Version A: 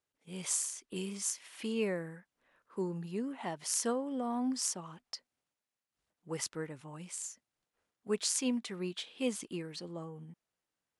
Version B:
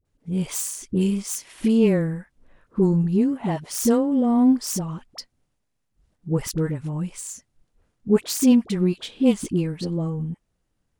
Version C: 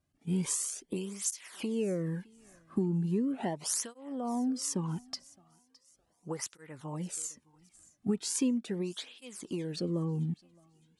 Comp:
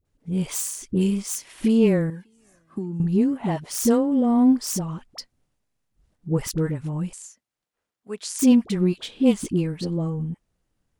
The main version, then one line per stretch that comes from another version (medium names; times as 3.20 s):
B
2.10–3.00 s: from C
7.13–8.39 s: from A